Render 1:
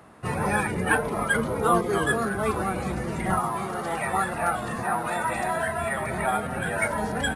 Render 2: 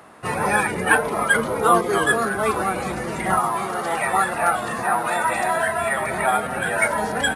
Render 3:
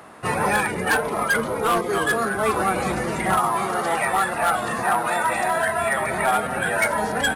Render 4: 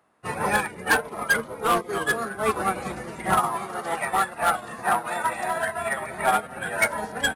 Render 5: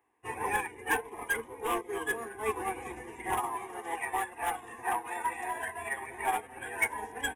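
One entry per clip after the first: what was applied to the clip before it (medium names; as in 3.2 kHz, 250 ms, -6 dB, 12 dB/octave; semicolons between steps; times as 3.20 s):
bass shelf 220 Hz -12 dB; trim +6.5 dB
hard clipper -14 dBFS, distortion -15 dB; gain riding within 3 dB 0.5 s
upward expansion 2.5:1, over -33 dBFS; trim +1.5 dB
static phaser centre 900 Hz, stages 8; trim -5.5 dB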